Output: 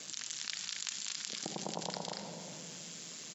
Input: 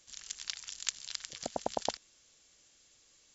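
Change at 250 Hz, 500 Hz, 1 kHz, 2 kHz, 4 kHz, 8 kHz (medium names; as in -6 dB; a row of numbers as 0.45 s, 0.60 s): +3.0 dB, -4.5 dB, -4.0 dB, +2.0 dB, +1.5 dB, no reading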